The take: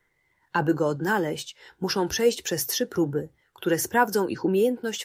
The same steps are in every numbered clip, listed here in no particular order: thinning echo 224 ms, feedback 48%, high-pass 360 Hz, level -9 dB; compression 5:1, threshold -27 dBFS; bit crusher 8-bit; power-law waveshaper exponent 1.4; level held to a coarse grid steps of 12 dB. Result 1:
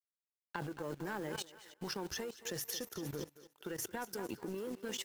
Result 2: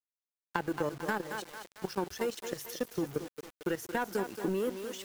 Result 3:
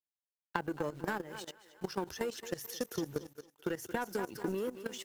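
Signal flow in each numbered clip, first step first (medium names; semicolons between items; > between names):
compression > bit crusher > thinning echo > level held to a coarse grid > power-law waveshaper; level held to a coarse grid > power-law waveshaper > thinning echo > bit crusher > compression; bit crusher > thinning echo > level held to a coarse grid > compression > power-law waveshaper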